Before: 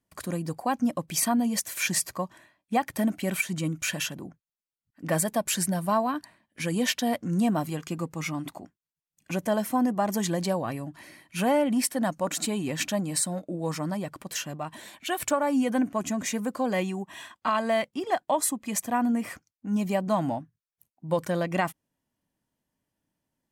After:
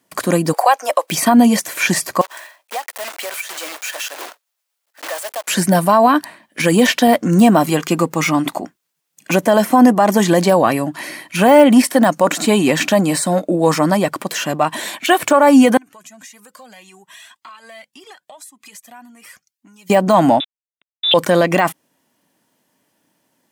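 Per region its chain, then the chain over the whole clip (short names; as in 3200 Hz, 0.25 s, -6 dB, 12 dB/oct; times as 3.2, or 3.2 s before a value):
0.53–1.1 steep high-pass 500 Hz + three-band squash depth 70%
2.21–5.48 block floating point 3-bit + HPF 530 Hz 24 dB/oct + compressor 4:1, threshold -43 dBFS
15.77–19.9 passive tone stack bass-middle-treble 5-5-5 + compressor 8:1, threshold -51 dBFS + cascading flanger rising 1.8 Hz
20.4–21.14 sample gate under -47.5 dBFS + inverted band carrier 3700 Hz
whole clip: Bessel high-pass 280 Hz, order 2; de-esser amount 90%; maximiser +20.5 dB; gain -1 dB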